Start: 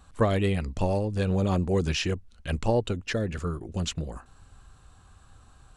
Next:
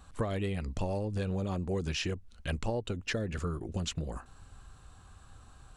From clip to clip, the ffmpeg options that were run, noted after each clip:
ffmpeg -i in.wav -af "acompressor=threshold=-30dB:ratio=5" out.wav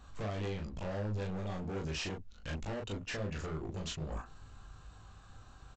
ffmpeg -i in.wav -af "aresample=16000,asoftclip=type=hard:threshold=-36dB,aresample=44100,aecho=1:1:20|38:0.501|0.668,volume=-2dB" out.wav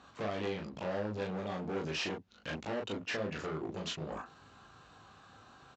ffmpeg -i in.wav -af "highpass=200,lowpass=5200,volume=4dB" out.wav

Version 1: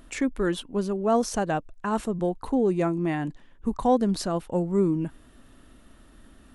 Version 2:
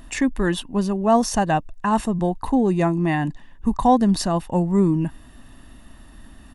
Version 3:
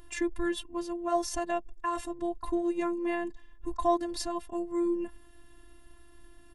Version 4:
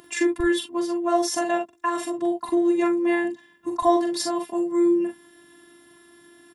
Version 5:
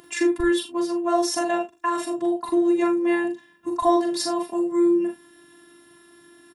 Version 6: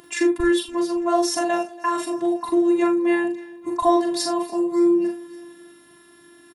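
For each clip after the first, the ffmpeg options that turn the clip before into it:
ffmpeg -i in.wav -af "aecho=1:1:1.1:0.49,volume=5.5dB" out.wav
ffmpeg -i in.wav -af "bandreject=frequency=670:width=19,afftfilt=real='hypot(re,im)*cos(PI*b)':imag='0':win_size=512:overlap=0.75,volume=-6dB" out.wav
ffmpeg -i in.wav -filter_complex "[0:a]acrossover=split=140[link_01][link_02];[link_01]acrusher=bits=3:mix=0:aa=0.5[link_03];[link_03][link_02]amix=inputs=2:normalize=0,aecho=1:1:43|60:0.562|0.224,volume=7.5dB" out.wav
ffmpeg -i in.wav -filter_complex "[0:a]asplit=2[link_01][link_02];[link_02]adelay=37,volume=-9dB[link_03];[link_01][link_03]amix=inputs=2:normalize=0" out.wav
ffmpeg -i in.wav -af "aecho=1:1:284|568|852|1136:0.0841|0.0488|0.0283|0.0164,volume=1.5dB" out.wav

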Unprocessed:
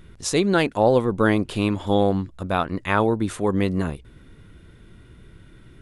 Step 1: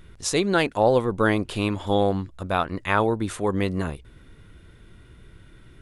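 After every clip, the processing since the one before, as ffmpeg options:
ffmpeg -i in.wav -af "equalizer=frequency=210:width_type=o:width=1.9:gain=-4" out.wav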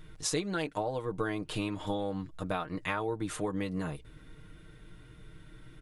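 ffmpeg -i in.wav -af "acompressor=threshold=-26dB:ratio=10,aecho=1:1:6.5:0.65,volume=-4dB" out.wav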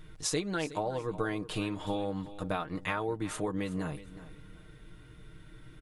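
ffmpeg -i in.wav -af "aecho=1:1:368|736:0.168|0.0403" out.wav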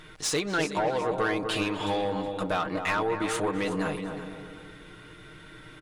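ffmpeg -i in.wav -filter_complex "[0:a]asplit=2[link_01][link_02];[link_02]highpass=frequency=720:poles=1,volume=18dB,asoftclip=type=tanh:threshold=-17.5dB[link_03];[link_01][link_03]amix=inputs=2:normalize=0,lowpass=frequency=5100:poles=1,volume=-6dB,asplit=2[link_04][link_05];[link_05]adelay=246,lowpass=frequency=1000:poles=1,volume=-5dB,asplit=2[link_06][link_07];[link_07]adelay=246,lowpass=frequency=1000:poles=1,volume=0.51,asplit=2[link_08][link_09];[link_09]adelay=246,lowpass=frequency=1000:poles=1,volume=0.51,asplit=2[link_10][link_11];[link_11]adelay=246,lowpass=frequency=1000:poles=1,volume=0.51,asplit=2[link_12][link_13];[link_13]adelay=246,lowpass=frequency=1000:poles=1,volume=0.51,asplit=2[link_14][link_15];[link_15]adelay=246,lowpass=frequency=1000:poles=1,volume=0.51[link_16];[link_04][link_06][link_08][link_10][link_12][link_14][link_16]amix=inputs=7:normalize=0" out.wav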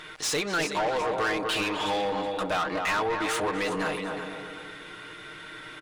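ffmpeg -i in.wav -filter_complex "[0:a]asplit=2[link_01][link_02];[link_02]highpass=frequency=720:poles=1,volume=18dB,asoftclip=type=tanh:threshold=-16dB[link_03];[link_01][link_03]amix=inputs=2:normalize=0,lowpass=frequency=6700:poles=1,volume=-6dB,volume=-4dB" out.wav

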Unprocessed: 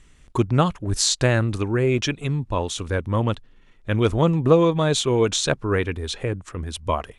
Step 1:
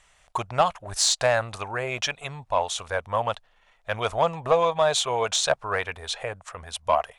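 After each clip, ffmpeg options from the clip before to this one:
ffmpeg -i in.wav -af "lowshelf=frequency=460:width_type=q:width=3:gain=-13.5,acontrast=72,volume=-7dB" out.wav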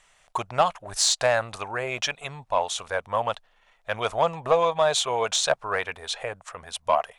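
ffmpeg -i in.wav -af "equalizer=frequency=60:width=1.1:gain=-12.5" out.wav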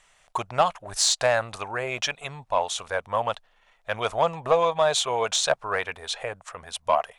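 ffmpeg -i in.wav -af anull out.wav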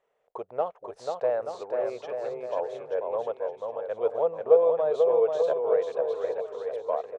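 ffmpeg -i in.wav -filter_complex "[0:a]bandpass=frequency=460:width_type=q:width=5.5:csg=0,asplit=2[link_01][link_02];[link_02]aecho=0:1:490|882|1196|1446|1647:0.631|0.398|0.251|0.158|0.1[link_03];[link_01][link_03]amix=inputs=2:normalize=0,volume=6dB" out.wav

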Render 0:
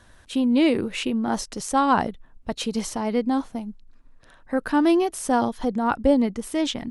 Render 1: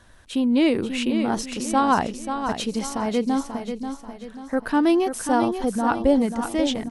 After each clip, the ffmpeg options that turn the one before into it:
ffmpeg -i in.wav -af "aecho=1:1:537|1074|1611|2148|2685:0.398|0.163|0.0669|0.0274|0.0112" out.wav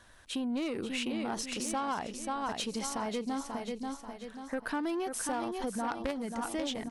ffmpeg -i in.wav -af "aeval=exprs='0.447*(cos(1*acos(clip(val(0)/0.447,-1,1)))-cos(1*PI/2))+0.141*(cos(3*acos(clip(val(0)/0.447,-1,1)))-cos(3*PI/2))+0.0631*(cos(5*acos(clip(val(0)/0.447,-1,1)))-cos(5*PI/2))':channel_layout=same,lowshelf=frequency=440:gain=-7,acompressor=threshold=-31dB:ratio=6" out.wav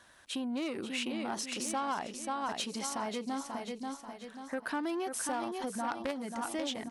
ffmpeg -i in.wav -af "highpass=frequency=210:poles=1,bandreject=frequency=460:width=12" out.wav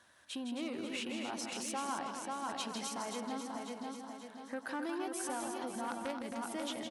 ffmpeg -i in.wav -filter_complex "[0:a]highpass=69,asplit=2[link_01][link_02];[link_02]aecho=0:1:160.3|265.3:0.447|0.447[link_03];[link_01][link_03]amix=inputs=2:normalize=0,volume=-5dB" out.wav

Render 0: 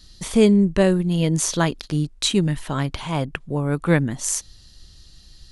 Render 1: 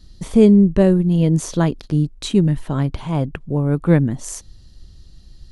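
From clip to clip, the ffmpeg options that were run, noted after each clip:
ffmpeg -i in.wav -af "tiltshelf=frequency=860:gain=6.5,volume=-1dB" out.wav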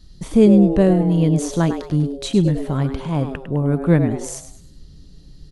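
ffmpeg -i in.wav -filter_complex "[0:a]asplit=5[link_01][link_02][link_03][link_04][link_05];[link_02]adelay=103,afreqshift=130,volume=-10dB[link_06];[link_03]adelay=206,afreqshift=260,volume=-19.1dB[link_07];[link_04]adelay=309,afreqshift=390,volume=-28.2dB[link_08];[link_05]adelay=412,afreqshift=520,volume=-37.4dB[link_09];[link_01][link_06][link_07][link_08][link_09]amix=inputs=5:normalize=0,volume=-1dB" out.wav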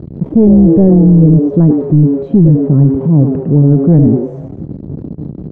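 ffmpeg -i in.wav -af "aeval=exprs='val(0)+0.5*0.0631*sgn(val(0))':channel_layout=same,asuperpass=centerf=210:order=4:qfactor=0.68,apsyclip=13.5dB,volume=-1.5dB" out.wav

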